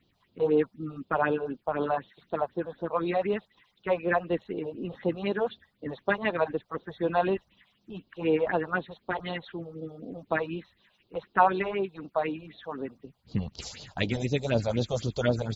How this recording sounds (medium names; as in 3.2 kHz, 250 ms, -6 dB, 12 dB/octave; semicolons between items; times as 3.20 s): phasing stages 4, 4 Hz, lowest notch 260–2000 Hz